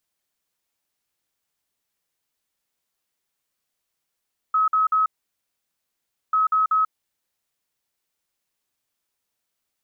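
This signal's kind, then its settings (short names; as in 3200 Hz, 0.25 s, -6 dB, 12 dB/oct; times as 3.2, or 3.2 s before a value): beep pattern sine 1280 Hz, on 0.14 s, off 0.05 s, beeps 3, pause 1.27 s, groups 2, -16 dBFS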